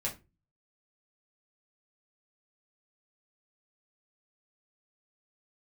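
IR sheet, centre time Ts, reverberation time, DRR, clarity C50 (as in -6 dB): 18 ms, 0.25 s, -4.5 dB, 12.5 dB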